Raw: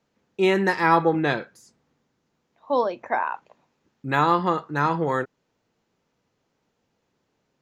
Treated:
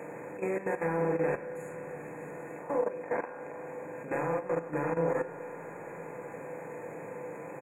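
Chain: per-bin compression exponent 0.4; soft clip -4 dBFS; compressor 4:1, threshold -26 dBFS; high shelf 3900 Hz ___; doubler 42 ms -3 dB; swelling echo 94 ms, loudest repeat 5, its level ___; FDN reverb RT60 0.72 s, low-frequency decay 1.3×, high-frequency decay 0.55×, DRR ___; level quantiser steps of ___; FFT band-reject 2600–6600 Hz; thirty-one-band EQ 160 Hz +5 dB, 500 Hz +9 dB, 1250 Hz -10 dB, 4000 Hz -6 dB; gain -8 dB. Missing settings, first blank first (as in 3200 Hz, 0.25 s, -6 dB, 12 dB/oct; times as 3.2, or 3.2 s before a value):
+7.5 dB, -17 dB, 5 dB, 12 dB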